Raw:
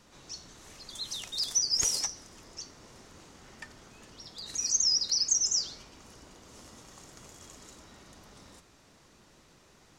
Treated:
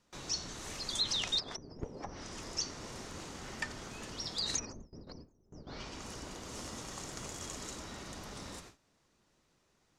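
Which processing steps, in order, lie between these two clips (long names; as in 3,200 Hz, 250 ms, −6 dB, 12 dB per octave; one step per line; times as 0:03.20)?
treble cut that deepens with the level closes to 380 Hz, closed at −25 dBFS
noise gate with hold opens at −46 dBFS
0:01.39–0:02.05: low-shelf EQ 140 Hz −7.5 dB
level +7.5 dB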